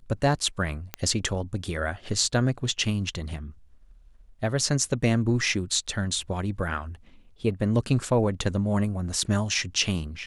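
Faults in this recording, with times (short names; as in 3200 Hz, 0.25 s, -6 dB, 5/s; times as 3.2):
0.94 pop -13 dBFS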